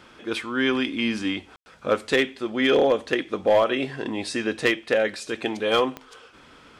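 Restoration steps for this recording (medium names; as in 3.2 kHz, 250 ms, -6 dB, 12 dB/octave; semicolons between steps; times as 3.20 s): clip repair -11.5 dBFS; de-click; room tone fill 1.56–1.66 s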